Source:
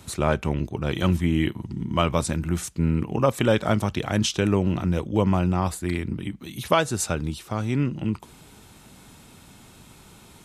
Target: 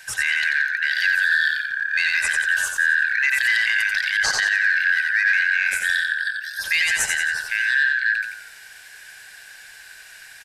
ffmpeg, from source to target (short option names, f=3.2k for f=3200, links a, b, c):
-filter_complex "[0:a]afftfilt=real='real(if(lt(b,272),68*(eq(floor(b/68),0)*3+eq(floor(b/68),1)*0+eq(floor(b/68),2)*1+eq(floor(b/68),3)*2)+mod(b,68),b),0)':imag='imag(if(lt(b,272),68*(eq(floor(b/68),0)*3+eq(floor(b/68),1)*0+eq(floor(b/68),2)*1+eq(floor(b/68),3)*2)+mod(b,68),b),0)':win_size=2048:overlap=0.75,acontrast=51,equalizer=f=290:t=o:w=1.4:g=-9.5,asplit=2[a][b];[b]asplit=5[c][d][e][f][g];[c]adelay=89,afreqshift=-38,volume=-4.5dB[h];[d]adelay=178,afreqshift=-76,volume=-12dB[i];[e]adelay=267,afreqshift=-114,volume=-19.6dB[j];[f]adelay=356,afreqshift=-152,volume=-27.1dB[k];[g]adelay=445,afreqshift=-190,volume=-34.6dB[l];[h][i][j][k][l]amix=inputs=5:normalize=0[m];[a][m]amix=inputs=2:normalize=0,alimiter=level_in=7.5dB:limit=-1dB:release=50:level=0:latency=1,volume=-9dB"